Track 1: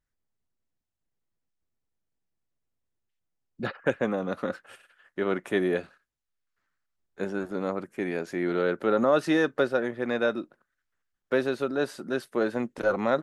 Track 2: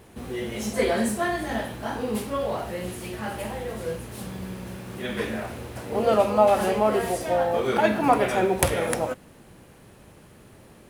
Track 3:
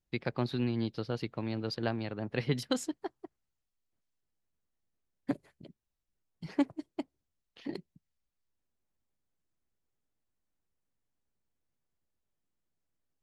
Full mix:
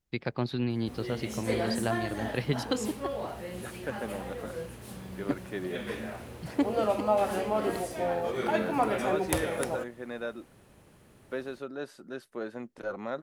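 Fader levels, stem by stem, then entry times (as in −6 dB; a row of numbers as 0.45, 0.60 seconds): −10.5, −7.5, +1.5 decibels; 0.00, 0.70, 0.00 seconds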